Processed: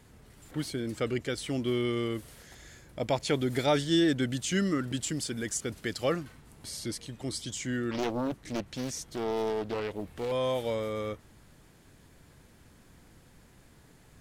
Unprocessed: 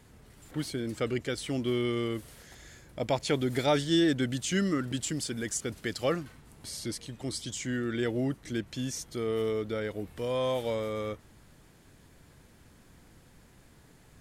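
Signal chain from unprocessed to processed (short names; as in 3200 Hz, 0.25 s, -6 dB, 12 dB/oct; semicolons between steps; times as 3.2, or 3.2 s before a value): 7.91–10.32 Doppler distortion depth 0.9 ms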